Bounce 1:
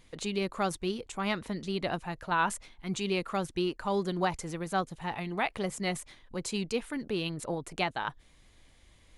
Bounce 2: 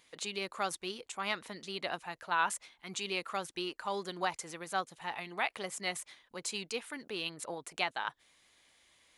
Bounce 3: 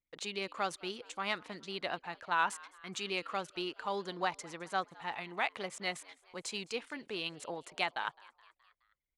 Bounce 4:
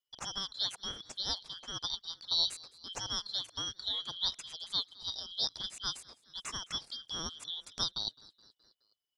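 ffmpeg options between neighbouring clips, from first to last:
-af "highpass=f=960:p=1"
-filter_complex "[0:a]adynamicsmooth=sensitivity=2.5:basefreq=7.3k,anlmdn=0.000631,asplit=5[a][b][c][d][e];[b]adelay=211,afreqshift=95,volume=-23dB[f];[c]adelay=422,afreqshift=190,volume=-28.2dB[g];[d]adelay=633,afreqshift=285,volume=-33.4dB[h];[e]adelay=844,afreqshift=380,volume=-38.6dB[i];[a][f][g][h][i]amix=inputs=5:normalize=0"
-af "afftfilt=real='real(if(lt(b,272),68*(eq(floor(b/68),0)*2+eq(floor(b/68),1)*3+eq(floor(b/68),2)*0+eq(floor(b/68),3)*1)+mod(b,68),b),0)':imag='imag(if(lt(b,272),68*(eq(floor(b/68),0)*2+eq(floor(b/68),1)*3+eq(floor(b/68),2)*0+eq(floor(b/68),3)*1)+mod(b,68),b),0)':win_size=2048:overlap=0.75"

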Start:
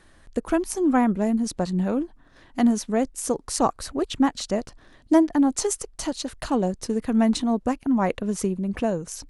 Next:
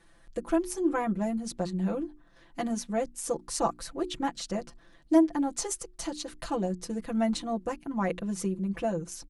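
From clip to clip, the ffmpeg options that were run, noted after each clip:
-af "bandreject=f=60:t=h:w=6,bandreject=f=120:t=h:w=6,bandreject=f=180:t=h:w=6,bandreject=f=240:t=h:w=6,bandreject=f=300:t=h:w=6,bandreject=f=360:t=h:w=6,aecho=1:1:5.9:0.97,volume=-8.5dB"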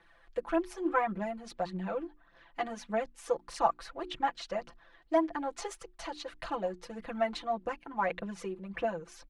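-filter_complex "[0:a]aphaser=in_gain=1:out_gain=1:delay=2.9:decay=0.47:speed=1.7:type=triangular,acrossover=split=540 3700:gain=0.224 1 0.1[a][b][c];[a][b][c]amix=inputs=3:normalize=0,volume=1.5dB"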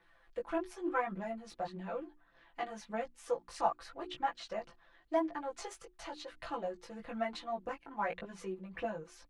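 -af "flanger=delay=16:depth=3.4:speed=0.94,volume=-1.5dB"

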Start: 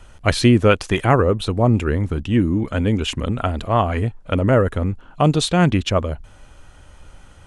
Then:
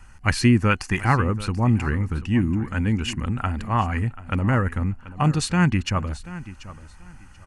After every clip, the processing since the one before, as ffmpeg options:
-af "superequalizer=6b=0.562:7b=0.316:8b=0.282:11b=1.41:13b=0.316,aecho=1:1:735|1470:0.15|0.0329,volume=-2.5dB"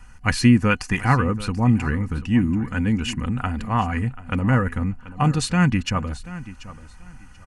-af "equalizer=f=130:t=o:w=0.3:g=8.5,aecho=1:1:4.1:0.41"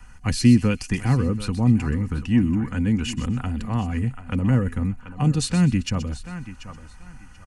-filter_complex "[0:a]acrossover=split=280|540|3000[a][b][c][d];[c]acompressor=threshold=-37dB:ratio=6[e];[d]aecho=1:1:126|252|378:0.299|0.0776|0.0202[f];[a][b][e][f]amix=inputs=4:normalize=0"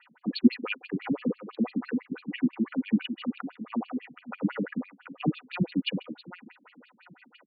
-af "afftfilt=real='re*between(b*sr/1024,240*pow(3400/240,0.5+0.5*sin(2*PI*6*pts/sr))/1.41,240*pow(3400/240,0.5+0.5*sin(2*PI*6*pts/sr))*1.41)':imag='im*between(b*sr/1024,240*pow(3400/240,0.5+0.5*sin(2*PI*6*pts/sr))/1.41,240*pow(3400/240,0.5+0.5*sin(2*PI*6*pts/sr))*1.41)':win_size=1024:overlap=0.75,volume=2.5dB"

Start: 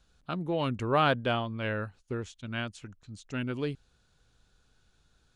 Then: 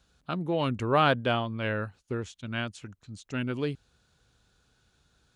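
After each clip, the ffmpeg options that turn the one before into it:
-af "highpass=53,volume=2dB"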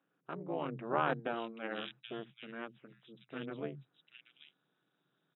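-filter_complex "[0:a]tremolo=f=230:d=0.947,acrossover=split=160|2700[a][b][c];[a]adelay=70[d];[c]adelay=780[e];[d][b][e]amix=inputs=3:normalize=0,afftfilt=real='re*between(b*sr/4096,120,3900)':imag='im*between(b*sr/4096,120,3900)':win_size=4096:overlap=0.75,volume=-5dB"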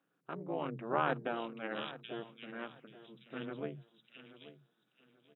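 -af "aecho=1:1:833|1666|2499:0.178|0.0462|0.012"

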